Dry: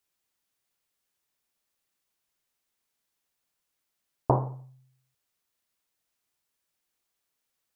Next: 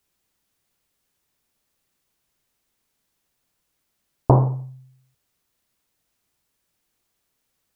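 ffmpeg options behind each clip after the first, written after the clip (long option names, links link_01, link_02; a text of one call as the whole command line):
ffmpeg -i in.wav -filter_complex "[0:a]lowshelf=frequency=360:gain=8.5,asplit=2[link_01][link_02];[link_02]alimiter=limit=-16dB:level=0:latency=1,volume=-3dB[link_03];[link_01][link_03]amix=inputs=2:normalize=0,volume=1.5dB" out.wav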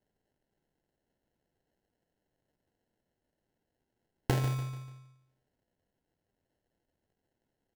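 ffmpeg -i in.wav -filter_complex "[0:a]acompressor=threshold=-16dB:ratio=6,acrusher=samples=37:mix=1:aa=0.000001,asplit=2[link_01][link_02];[link_02]aecho=0:1:146|292|438|584:0.266|0.109|0.0447|0.0183[link_03];[link_01][link_03]amix=inputs=2:normalize=0,volume=-8.5dB" out.wav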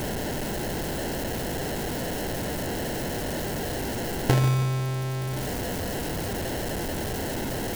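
ffmpeg -i in.wav -af "aeval=exprs='val(0)+0.5*0.0376*sgn(val(0))':channel_layout=same,volume=5.5dB" out.wav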